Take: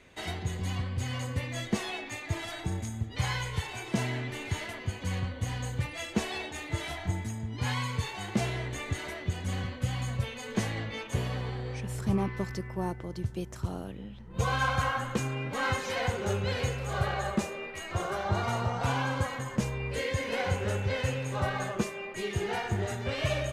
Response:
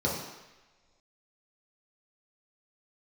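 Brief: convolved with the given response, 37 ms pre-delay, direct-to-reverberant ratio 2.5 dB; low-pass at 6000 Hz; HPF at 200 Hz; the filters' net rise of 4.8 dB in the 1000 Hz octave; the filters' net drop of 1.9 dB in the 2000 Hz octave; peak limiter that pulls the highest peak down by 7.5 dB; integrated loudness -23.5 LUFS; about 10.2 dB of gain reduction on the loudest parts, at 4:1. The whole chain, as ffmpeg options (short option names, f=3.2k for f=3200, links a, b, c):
-filter_complex "[0:a]highpass=200,lowpass=6k,equalizer=f=1k:t=o:g=7,equalizer=f=2k:t=o:g=-5,acompressor=threshold=-34dB:ratio=4,alimiter=level_in=4.5dB:limit=-24dB:level=0:latency=1,volume=-4.5dB,asplit=2[a][b];[1:a]atrim=start_sample=2205,adelay=37[c];[b][c]afir=irnorm=-1:irlink=0,volume=-12.5dB[d];[a][d]amix=inputs=2:normalize=0,volume=12.5dB"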